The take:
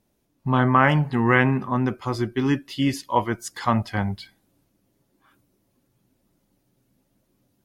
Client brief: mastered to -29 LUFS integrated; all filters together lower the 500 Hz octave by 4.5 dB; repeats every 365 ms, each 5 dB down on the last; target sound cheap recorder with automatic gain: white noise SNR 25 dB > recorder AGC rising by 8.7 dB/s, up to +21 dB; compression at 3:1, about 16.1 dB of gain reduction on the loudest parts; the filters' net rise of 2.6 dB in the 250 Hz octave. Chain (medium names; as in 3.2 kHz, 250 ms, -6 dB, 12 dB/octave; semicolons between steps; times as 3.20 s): peaking EQ 250 Hz +5 dB; peaking EQ 500 Hz -8.5 dB; compression 3:1, threshold -37 dBFS; feedback delay 365 ms, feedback 56%, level -5 dB; white noise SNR 25 dB; recorder AGC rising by 8.7 dB/s, up to +21 dB; trim +7.5 dB